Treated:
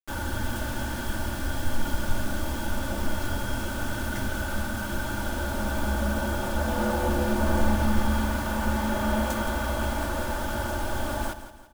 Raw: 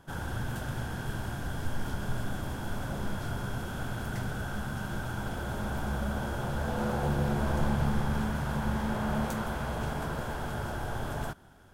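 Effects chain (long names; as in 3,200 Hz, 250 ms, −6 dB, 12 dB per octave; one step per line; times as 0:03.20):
comb filter 3.4 ms, depth 94%
bit reduction 7 bits
repeating echo 169 ms, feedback 42%, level −12 dB
level +2.5 dB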